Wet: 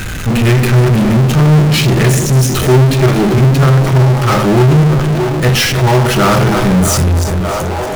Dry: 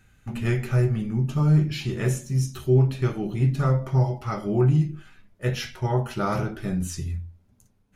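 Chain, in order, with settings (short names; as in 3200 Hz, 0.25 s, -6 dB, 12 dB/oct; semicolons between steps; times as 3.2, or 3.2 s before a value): regenerating reverse delay 0.161 s, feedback 41%, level -10 dB; on a send: narrowing echo 0.622 s, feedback 58%, band-pass 680 Hz, level -12 dB; on the sum: power-law curve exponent 0.35; gain +6 dB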